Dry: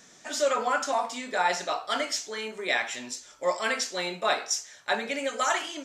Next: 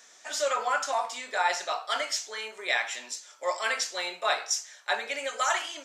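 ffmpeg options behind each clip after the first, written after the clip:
-af "highpass=600"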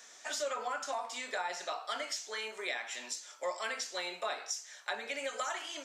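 -filter_complex "[0:a]acrossover=split=340[s0][s1];[s1]acompressor=threshold=0.0178:ratio=6[s2];[s0][s2]amix=inputs=2:normalize=0"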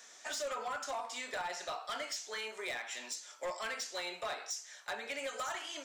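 -af "asoftclip=type=hard:threshold=0.0237,volume=0.891"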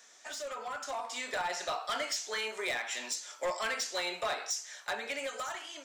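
-af "dynaudnorm=f=300:g=7:m=2.51,volume=0.75"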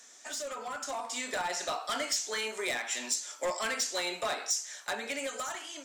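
-af "equalizer=f=250:t=o:w=1:g=7,equalizer=f=8000:t=o:w=1:g=5,equalizer=f=16000:t=o:w=1:g=5"

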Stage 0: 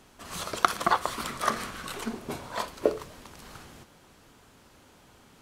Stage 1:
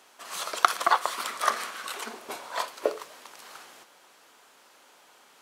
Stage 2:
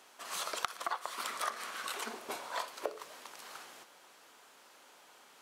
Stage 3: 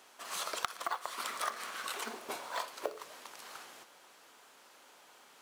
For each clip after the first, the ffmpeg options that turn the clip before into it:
-af "highpass=580,volume=1.33"
-af "acompressor=threshold=0.0282:ratio=5,volume=0.75"
-af "acrusher=bits=5:mode=log:mix=0:aa=0.000001"

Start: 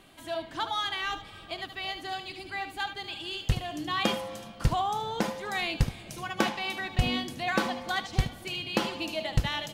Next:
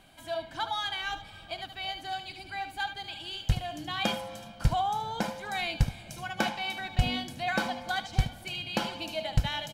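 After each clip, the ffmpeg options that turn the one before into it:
-af "aecho=1:1:1.3:0.49,volume=0.75"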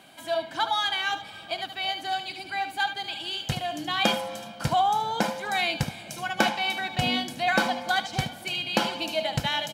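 -af "highpass=190,volume=2.11"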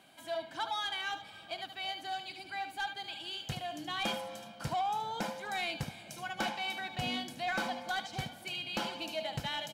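-af "asoftclip=type=tanh:threshold=0.126,volume=0.376"

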